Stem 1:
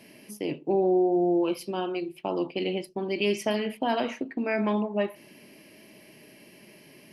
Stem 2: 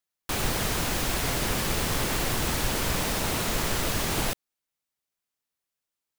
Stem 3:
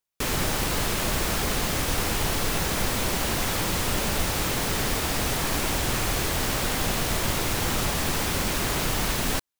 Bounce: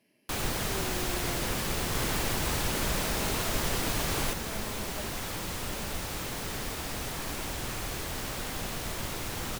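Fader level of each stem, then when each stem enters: -18.5 dB, -4.0 dB, -9.5 dB; 0.00 s, 0.00 s, 1.75 s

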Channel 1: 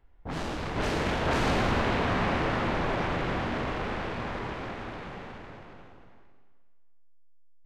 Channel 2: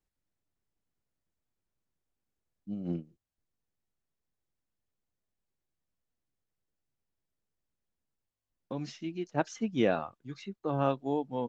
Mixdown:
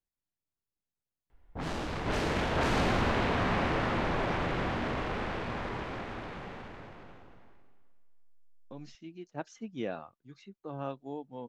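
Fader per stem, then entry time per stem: -2.0 dB, -9.0 dB; 1.30 s, 0.00 s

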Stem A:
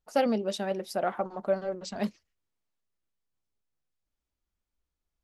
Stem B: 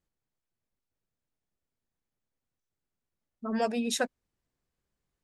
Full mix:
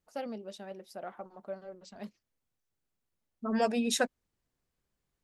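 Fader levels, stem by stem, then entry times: -13.0 dB, +0.5 dB; 0.00 s, 0.00 s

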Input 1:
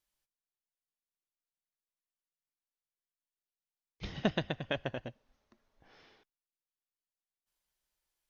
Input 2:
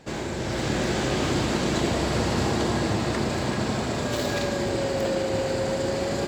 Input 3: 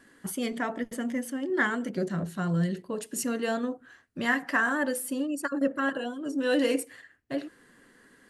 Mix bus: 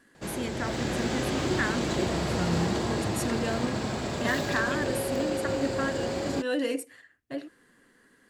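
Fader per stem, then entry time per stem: -3.5 dB, -4.5 dB, -3.5 dB; 0.00 s, 0.15 s, 0.00 s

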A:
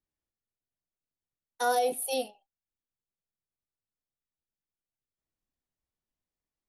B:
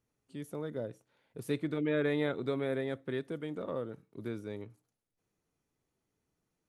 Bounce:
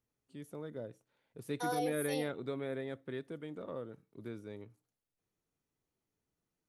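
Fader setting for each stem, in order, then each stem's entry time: -9.5 dB, -5.5 dB; 0.00 s, 0.00 s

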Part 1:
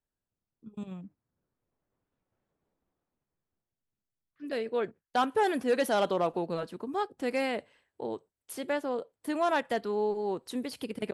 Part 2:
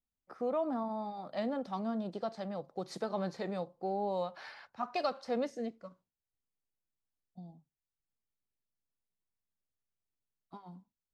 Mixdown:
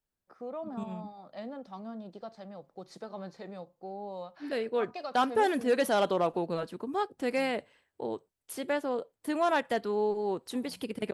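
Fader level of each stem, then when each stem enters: +0.5 dB, -6.0 dB; 0.00 s, 0.00 s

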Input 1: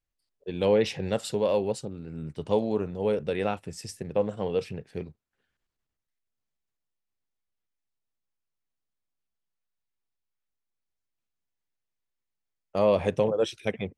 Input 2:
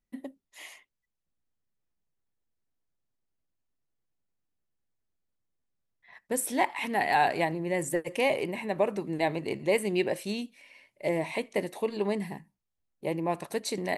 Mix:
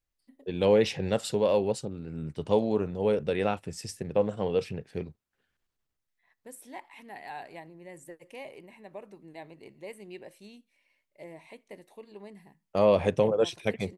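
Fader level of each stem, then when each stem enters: +0.5 dB, -17.0 dB; 0.00 s, 0.15 s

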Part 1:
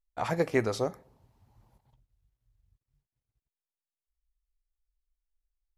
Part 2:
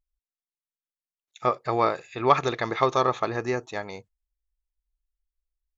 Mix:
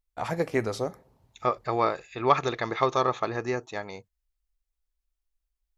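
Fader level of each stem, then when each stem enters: 0.0 dB, -2.0 dB; 0.00 s, 0.00 s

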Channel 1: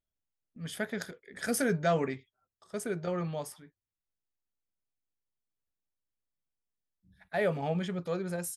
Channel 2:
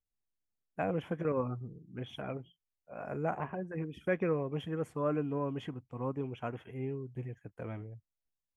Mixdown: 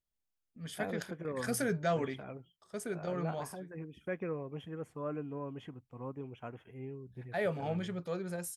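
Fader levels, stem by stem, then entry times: -4.0 dB, -6.5 dB; 0.00 s, 0.00 s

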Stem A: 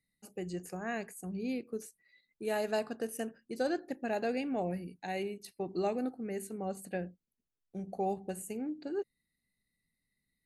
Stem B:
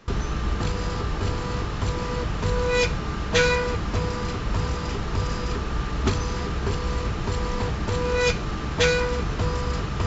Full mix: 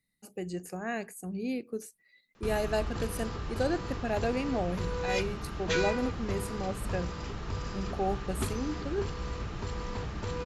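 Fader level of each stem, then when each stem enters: +2.5 dB, -10.0 dB; 0.00 s, 2.35 s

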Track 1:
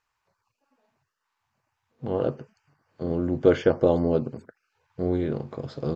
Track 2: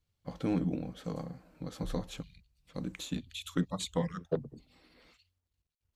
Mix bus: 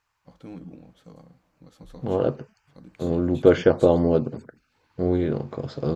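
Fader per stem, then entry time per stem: +3.0 dB, -9.5 dB; 0.00 s, 0.00 s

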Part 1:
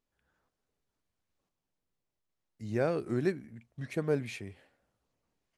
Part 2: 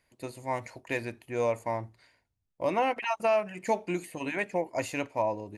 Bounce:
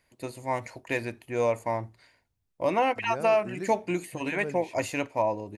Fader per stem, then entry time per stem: -7.0 dB, +2.5 dB; 0.35 s, 0.00 s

